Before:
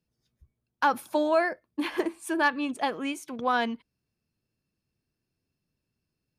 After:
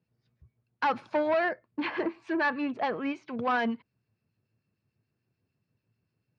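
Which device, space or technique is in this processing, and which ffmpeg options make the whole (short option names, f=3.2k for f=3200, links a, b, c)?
guitar amplifier with harmonic tremolo: -filter_complex "[0:a]acrossover=split=1600[a][b];[a]aeval=exprs='val(0)*(1-0.5/2+0.5/2*cos(2*PI*6.8*n/s))':c=same[c];[b]aeval=exprs='val(0)*(1-0.5/2-0.5/2*cos(2*PI*6.8*n/s))':c=same[d];[c][d]amix=inputs=2:normalize=0,asoftclip=type=tanh:threshold=-27dB,highpass=97,equalizer=f=110:t=q:w=4:g=10,equalizer=f=300:t=q:w=4:g=-3,equalizer=f=3.4k:t=q:w=4:g=-8,lowpass=f=4.1k:w=0.5412,lowpass=f=4.1k:w=1.3066,asettb=1/sr,asplit=3[e][f][g];[e]atrim=end=1.324[h];[f]atrim=start=1.32:end=3.36,asetpts=PTS-STARTPTS,afade=t=in:d=0.004:c=qsin,afade=t=out:st=2.036:d=0.004:c=qsin,lowpass=5.4k[i];[g]atrim=start=3.356[j];[h][i]acrossfade=d=0.004:c1=hsin:c2=qsin[k];[k][j]acrossfade=d=0.004:c1=qsin:c2=hsin,volume=5.5dB"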